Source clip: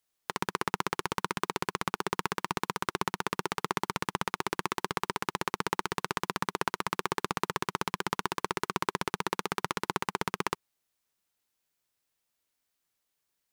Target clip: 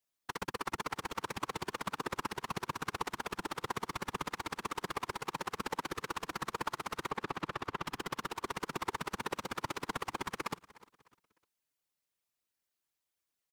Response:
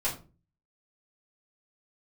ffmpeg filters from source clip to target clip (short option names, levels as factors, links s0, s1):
-filter_complex "[0:a]asettb=1/sr,asplit=3[s0][s1][s2];[s0]atrim=end=7.084[s3];[s1]atrim=start=7.08:end=7.86,asetpts=PTS-STARTPTS,afade=t=in:d=0.004:c=qsin,afade=t=out:st=0.776:d=0.004:c=qsin,acrossover=split=4400[s4][s5];[s5]acompressor=threshold=0.00447:ratio=4:attack=1:release=60[s6];[s4][s6]amix=inputs=2:normalize=0[s7];[s2]atrim=start=7.856[s8];[s3][s7]acrossfade=d=0.004:c1=hsin:c2=qsin[s9];[s9][s8]acrossfade=d=0.004:c1=qsin:c2=hsin,aecho=1:1:302|604|906:0.1|0.035|0.0123,afftfilt=real='hypot(re,im)*cos(2*PI*random(0))':imag='hypot(re,im)*sin(2*PI*random(1))':win_size=512:overlap=0.75"